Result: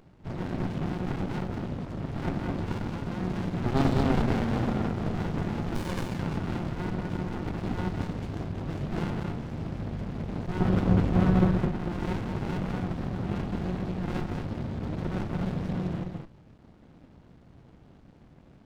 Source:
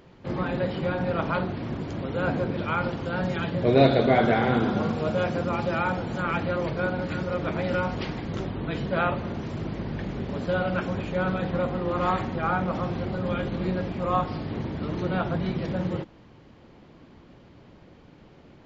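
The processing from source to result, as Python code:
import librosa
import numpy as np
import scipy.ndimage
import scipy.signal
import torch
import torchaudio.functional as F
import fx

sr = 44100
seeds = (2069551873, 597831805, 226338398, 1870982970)

y = fx.spec_paint(x, sr, seeds[0], shape='fall', start_s=5.75, length_s=0.28, low_hz=1300.0, high_hz=5300.0, level_db=-22.0)
y = fx.low_shelf(y, sr, hz=500.0, db=10.5, at=(10.6, 11.5))
y = y + 10.0 ** (-5.0 / 20.0) * np.pad(y, (int(211 * sr / 1000.0), 0))[:len(y)]
y = fx.running_max(y, sr, window=65)
y = y * 10.0 ** (-2.0 / 20.0)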